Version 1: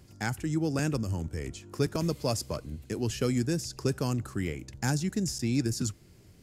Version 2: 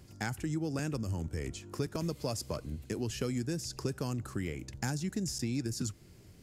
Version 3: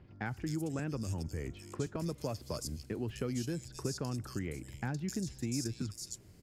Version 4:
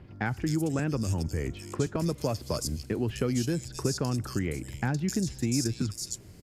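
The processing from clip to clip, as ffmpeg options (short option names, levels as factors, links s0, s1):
-af "acompressor=threshold=0.0251:ratio=3"
-filter_complex "[0:a]acrossover=split=3200[s0][s1];[s1]adelay=260[s2];[s0][s2]amix=inputs=2:normalize=0,volume=0.794"
-af "aresample=32000,aresample=44100,volume=2.51"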